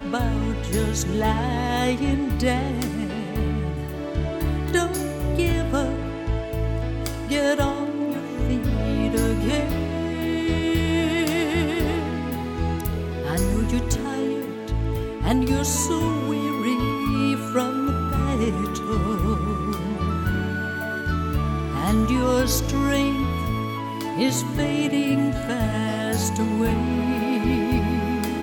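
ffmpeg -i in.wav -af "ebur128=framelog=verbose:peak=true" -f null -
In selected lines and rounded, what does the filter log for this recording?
Integrated loudness:
  I:         -23.9 LUFS
  Threshold: -33.9 LUFS
Loudness range:
  LRA:         2.3 LU
  Threshold: -43.9 LUFS
  LRA low:   -25.2 LUFS
  LRA high:  -22.9 LUFS
True peak:
  Peak:       -9.5 dBFS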